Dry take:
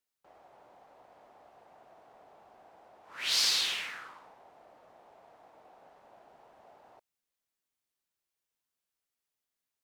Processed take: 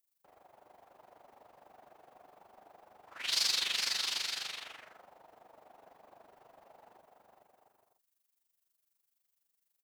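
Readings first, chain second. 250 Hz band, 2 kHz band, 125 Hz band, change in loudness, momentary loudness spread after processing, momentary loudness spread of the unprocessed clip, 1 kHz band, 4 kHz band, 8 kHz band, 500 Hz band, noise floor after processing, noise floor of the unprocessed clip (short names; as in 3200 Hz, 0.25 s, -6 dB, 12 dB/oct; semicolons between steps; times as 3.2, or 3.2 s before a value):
-1.0 dB, -1.0 dB, n/a, -3.0 dB, 13 LU, 16 LU, -1.0 dB, -1.0 dB, -1.5 dB, -1.5 dB, -83 dBFS, under -85 dBFS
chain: bouncing-ball echo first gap 0.43 s, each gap 0.6×, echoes 5; added noise violet -77 dBFS; AM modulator 24 Hz, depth 60%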